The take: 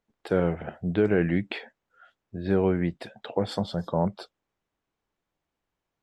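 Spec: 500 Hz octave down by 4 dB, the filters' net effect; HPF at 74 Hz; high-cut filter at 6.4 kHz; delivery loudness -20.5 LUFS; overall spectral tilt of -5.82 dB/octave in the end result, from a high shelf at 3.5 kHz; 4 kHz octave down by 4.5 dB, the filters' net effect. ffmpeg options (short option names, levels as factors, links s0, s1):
-af "highpass=74,lowpass=6400,equalizer=f=500:t=o:g=-5,highshelf=f=3500:g=4,equalizer=f=4000:t=o:g=-7.5,volume=2.82"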